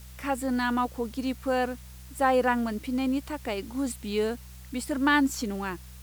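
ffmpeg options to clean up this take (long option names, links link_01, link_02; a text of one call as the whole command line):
ffmpeg -i in.wav -af "bandreject=frequency=62.7:width_type=h:width=4,bandreject=frequency=125.4:width_type=h:width=4,bandreject=frequency=188.1:width_type=h:width=4,afwtdn=0.0022" out.wav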